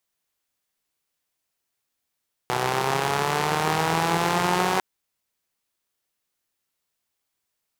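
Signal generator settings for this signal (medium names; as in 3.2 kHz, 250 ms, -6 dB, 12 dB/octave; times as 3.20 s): four-cylinder engine model, changing speed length 2.30 s, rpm 3700, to 5600, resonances 170/410/790 Hz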